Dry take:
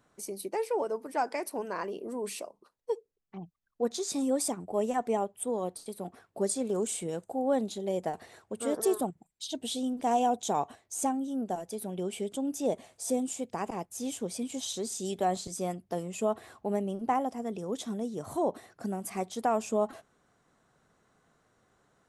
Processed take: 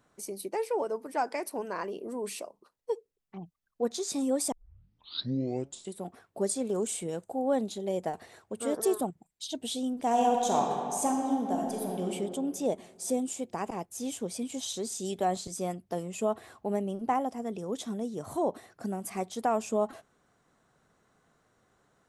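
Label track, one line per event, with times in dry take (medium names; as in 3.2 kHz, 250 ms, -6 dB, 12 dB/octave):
4.520000	4.520000	tape start 1.52 s
10.090000	12.050000	reverb throw, RT60 2.4 s, DRR 0 dB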